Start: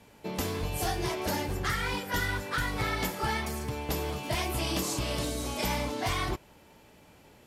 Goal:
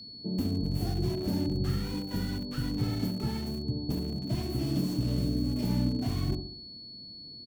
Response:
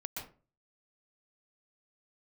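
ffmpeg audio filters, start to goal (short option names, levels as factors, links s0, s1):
-filter_complex "[0:a]equalizer=f=125:t=o:w=1:g=8,equalizer=f=250:t=o:w=1:g=11,equalizer=f=500:t=o:w=1:g=-4,equalizer=f=1000:t=o:w=1:g=-6,equalizer=f=2000:t=o:w=1:g=-7,equalizer=f=4000:t=o:w=1:g=-4,equalizer=f=8000:t=o:w=1:g=-9,asplit=2[s0][s1];[s1]adelay=65,lowpass=f=1800:p=1,volume=0.501,asplit=2[s2][s3];[s3]adelay=65,lowpass=f=1800:p=1,volume=0.5,asplit=2[s4][s5];[s5]adelay=65,lowpass=f=1800:p=1,volume=0.5,asplit=2[s6][s7];[s7]adelay=65,lowpass=f=1800:p=1,volume=0.5,asplit=2[s8][s9];[s9]adelay=65,lowpass=f=1800:p=1,volume=0.5,asplit=2[s10][s11];[s11]adelay=65,lowpass=f=1800:p=1,volume=0.5[s12];[s0][s2][s4][s6][s8][s10][s12]amix=inputs=7:normalize=0,acrossover=split=800[s13][s14];[s14]acrusher=bits=4:dc=4:mix=0:aa=0.000001[s15];[s13][s15]amix=inputs=2:normalize=0,aeval=exprs='val(0)+0.0112*sin(2*PI*4400*n/s)':c=same,volume=0.596"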